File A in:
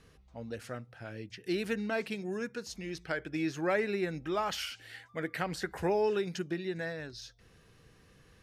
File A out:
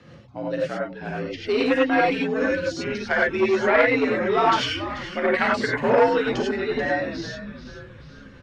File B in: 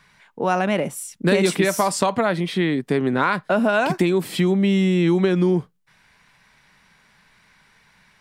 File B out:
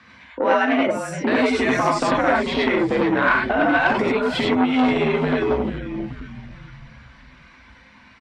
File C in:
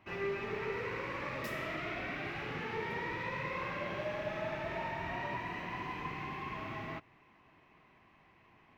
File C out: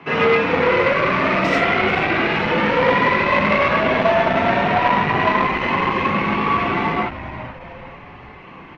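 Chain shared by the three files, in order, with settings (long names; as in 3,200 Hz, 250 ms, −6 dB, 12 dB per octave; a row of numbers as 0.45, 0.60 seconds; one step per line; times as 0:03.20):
mains-hum notches 60/120/180 Hz
reverb reduction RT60 1.4 s
dynamic equaliser 1,800 Hz, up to +6 dB, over −42 dBFS, Q 1.9
downward compressor 3 to 1, threshold −26 dBFS
frequency shifter +60 Hz
high-frequency loss of the air 150 metres
on a send: echo with shifted repeats 435 ms, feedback 47%, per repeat −95 Hz, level −12.5 dB
on the sum: reverb whose tail is shaped and stops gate 120 ms rising, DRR −3.5 dB
saturating transformer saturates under 960 Hz
normalise the peak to −3 dBFS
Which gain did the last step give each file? +10.5, +6.5, +22.0 decibels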